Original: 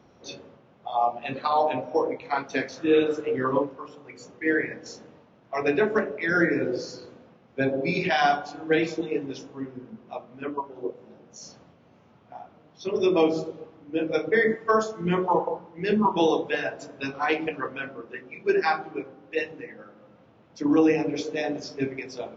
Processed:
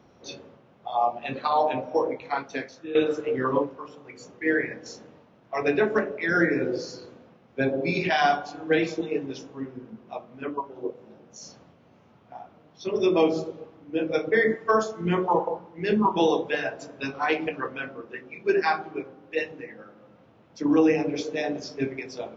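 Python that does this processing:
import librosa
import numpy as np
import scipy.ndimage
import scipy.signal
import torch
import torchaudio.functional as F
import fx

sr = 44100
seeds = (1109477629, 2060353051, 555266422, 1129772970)

y = fx.edit(x, sr, fx.fade_out_to(start_s=2.22, length_s=0.73, floor_db=-16.0), tone=tone)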